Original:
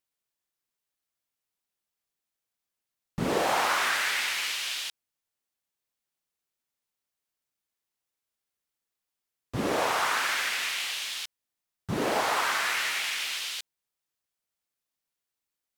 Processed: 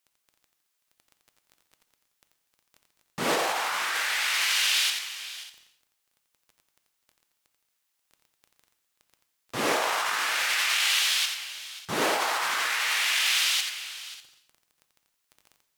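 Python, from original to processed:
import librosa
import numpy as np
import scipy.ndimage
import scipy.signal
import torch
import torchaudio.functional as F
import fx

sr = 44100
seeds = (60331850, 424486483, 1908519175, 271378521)

p1 = fx.highpass(x, sr, hz=1000.0, slope=6)
p2 = fx.dmg_crackle(p1, sr, seeds[0], per_s=10.0, level_db=-47.0)
p3 = p2 + fx.echo_multitap(p2, sr, ms=(87, 535, 595), db=(-7.0, -16.0, -19.5), dry=0)
p4 = fx.rev_gated(p3, sr, seeds[1], gate_ms=350, shape='falling', drr_db=9.0)
p5 = fx.over_compress(p4, sr, threshold_db=-32.0, ratio=-1.0)
y = p5 * librosa.db_to_amplitude(6.0)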